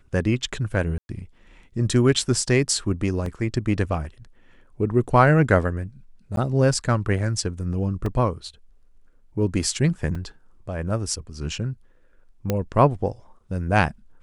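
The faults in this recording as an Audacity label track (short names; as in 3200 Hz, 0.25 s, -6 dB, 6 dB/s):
0.980000	1.090000	gap 0.111 s
3.260000	3.260000	gap 2.5 ms
6.360000	6.370000	gap 12 ms
8.060000	8.060000	gap 2.9 ms
10.150000	10.150000	gap 3.1 ms
12.500000	12.500000	pop -9 dBFS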